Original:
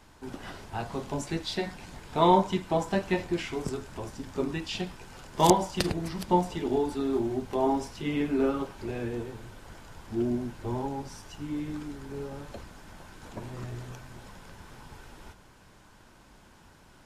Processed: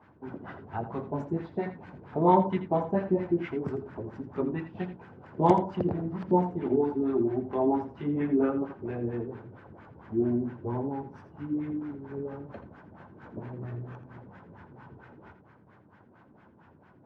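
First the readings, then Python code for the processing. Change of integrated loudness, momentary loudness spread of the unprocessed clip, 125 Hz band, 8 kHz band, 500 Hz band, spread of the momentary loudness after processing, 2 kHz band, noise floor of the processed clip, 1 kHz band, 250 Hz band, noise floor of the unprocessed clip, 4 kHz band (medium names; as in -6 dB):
0.0 dB, 23 LU, +1.0 dB, under -25 dB, +0.5 dB, 18 LU, -6.0 dB, -58 dBFS, -1.5 dB, +1.5 dB, -56 dBFS, under -15 dB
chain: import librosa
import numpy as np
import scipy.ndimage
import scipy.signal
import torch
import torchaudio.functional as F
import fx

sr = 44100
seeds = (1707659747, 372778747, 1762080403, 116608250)

p1 = scipy.signal.sosfilt(scipy.signal.butter(4, 91.0, 'highpass', fs=sr, output='sos'), x)
p2 = fx.low_shelf(p1, sr, hz=350.0, db=4.0)
p3 = fx.filter_lfo_lowpass(p2, sr, shape='sine', hz=4.4, low_hz=340.0, high_hz=1900.0, q=1.6)
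p4 = p3 + fx.echo_single(p3, sr, ms=83, db=-11.5, dry=0)
y = p4 * librosa.db_to_amplitude(-3.0)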